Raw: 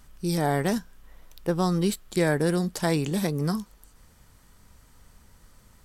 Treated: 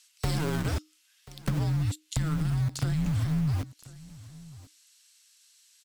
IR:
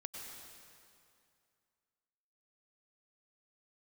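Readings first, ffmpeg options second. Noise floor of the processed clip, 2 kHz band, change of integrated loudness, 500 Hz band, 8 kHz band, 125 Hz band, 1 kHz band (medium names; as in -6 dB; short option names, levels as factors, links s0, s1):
-66 dBFS, -7.5 dB, -3.5 dB, -13.5 dB, -4.5 dB, +2.5 dB, -9.5 dB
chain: -filter_complex "[0:a]lowpass=9000,asubboost=boost=8.5:cutoff=210,acrossover=split=2800[s0][s1];[s0]aeval=exprs='val(0)*gte(abs(val(0)),0.0562)':c=same[s2];[s2][s1]amix=inputs=2:normalize=0,alimiter=limit=0.158:level=0:latency=1:release=112,afreqshift=-310,acompressor=threshold=0.0251:ratio=6,aecho=1:1:1036:0.1,volume=2.11"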